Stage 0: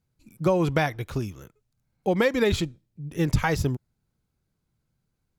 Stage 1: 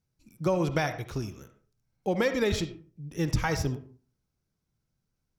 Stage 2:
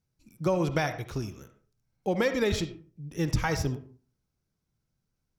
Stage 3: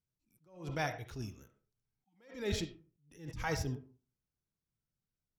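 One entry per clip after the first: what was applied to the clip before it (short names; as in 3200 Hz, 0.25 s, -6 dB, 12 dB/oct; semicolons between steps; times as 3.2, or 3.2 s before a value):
bell 5600 Hz +9 dB 0.25 oct; reverb RT60 0.40 s, pre-delay 30 ms, DRR 9.5 dB; gain -4.5 dB
nothing audible
spectral noise reduction 6 dB; spectral repair 1.8–2.16, 340–740 Hz before; attack slew limiter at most 120 dB/s; gain -5.5 dB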